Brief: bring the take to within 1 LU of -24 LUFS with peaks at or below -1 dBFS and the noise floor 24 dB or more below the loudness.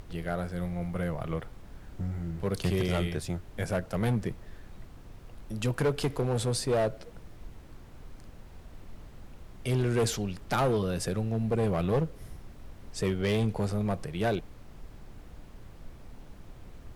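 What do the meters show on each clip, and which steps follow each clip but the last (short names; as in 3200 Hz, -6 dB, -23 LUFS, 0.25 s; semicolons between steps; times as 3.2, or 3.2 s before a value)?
clipped 1.8%; flat tops at -21.5 dBFS; noise floor -49 dBFS; noise floor target -55 dBFS; loudness -30.5 LUFS; peak -21.5 dBFS; loudness target -24.0 LUFS
-> clip repair -21.5 dBFS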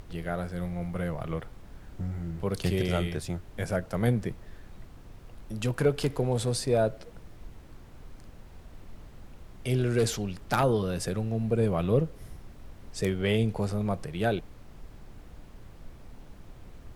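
clipped 0.0%; noise floor -49 dBFS; noise floor target -54 dBFS
-> noise print and reduce 6 dB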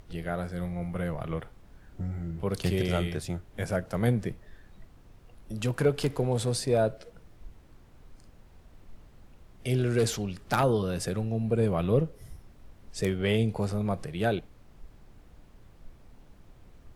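noise floor -55 dBFS; loudness -29.5 LUFS; peak -12.5 dBFS; loudness target -24.0 LUFS
-> gain +5.5 dB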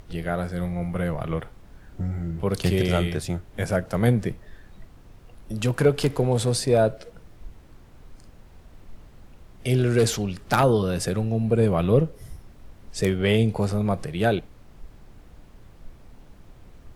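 loudness -24.0 LUFS; peak -7.0 dBFS; noise floor -49 dBFS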